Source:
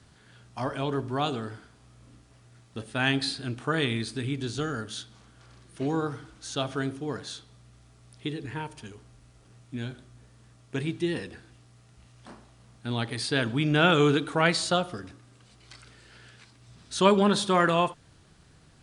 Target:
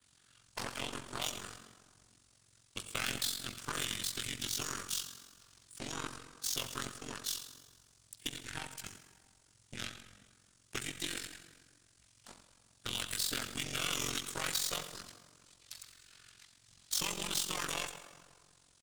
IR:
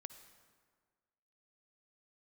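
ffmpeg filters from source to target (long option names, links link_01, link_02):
-filter_complex "[0:a]adynamicequalizer=threshold=0.00251:dfrequency=6100:dqfactor=2:tfrequency=6100:tqfactor=2:attack=5:release=100:ratio=0.375:range=3.5:mode=boostabove:tftype=bell,acrossover=split=150|1400[link_01][link_02][link_03];[link_02]alimiter=limit=-17.5dB:level=0:latency=1[link_04];[link_01][link_04][link_03]amix=inputs=3:normalize=0,acrossover=split=1300|6100[link_05][link_06][link_07];[link_05]acompressor=threshold=-39dB:ratio=4[link_08];[link_06]acompressor=threshold=-43dB:ratio=4[link_09];[link_07]acompressor=threshold=-48dB:ratio=4[link_10];[link_08][link_09][link_10]amix=inputs=3:normalize=0,asplit=2[link_11][link_12];[link_12]asoftclip=type=tanh:threshold=-34.5dB,volume=-10dB[link_13];[link_11][link_13]amix=inputs=2:normalize=0,aeval=exprs='0.075*(cos(1*acos(clip(val(0)/0.075,-1,1)))-cos(1*PI/2))+0.0299*(cos(2*acos(clip(val(0)/0.075,-1,1)))-cos(2*PI/2))+0.00841*(cos(7*acos(clip(val(0)/0.075,-1,1)))-cos(7*PI/2))':channel_layout=same,aecho=1:1:96:0.15,asplit=2[link_14][link_15];[link_15]asetrate=37084,aresample=44100,atempo=1.18921,volume=0dB[link_16];[link_14][link_16]amix=inputs=2:normalize=0,crystalizer=i=8:c=0,volume=17dB,asoftclip=hard,volume=-17dB[link_17];[1:a]atrim=start_sample=2205[link_18];[link_17][link_18]afir=irnorm=-1:irlink=0,tremolo=f=45:d=0.788,volume=-1.5dB"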